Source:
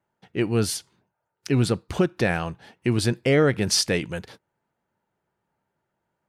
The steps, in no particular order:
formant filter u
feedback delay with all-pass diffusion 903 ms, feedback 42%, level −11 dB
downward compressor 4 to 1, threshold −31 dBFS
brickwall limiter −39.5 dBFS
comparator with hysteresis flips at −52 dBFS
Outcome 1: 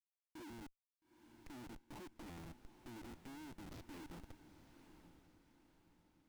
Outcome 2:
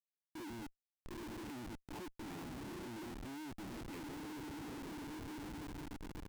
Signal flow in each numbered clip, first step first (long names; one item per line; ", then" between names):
downward compressor, then formant filter, then brickwall limiter, then comparator with hysteresis, then feedback delay with all-pass diffusion
feedback delay with all-pass diffusion, then downward compressor, then formant filter, then comparator with hysteresis, then brickwall limiter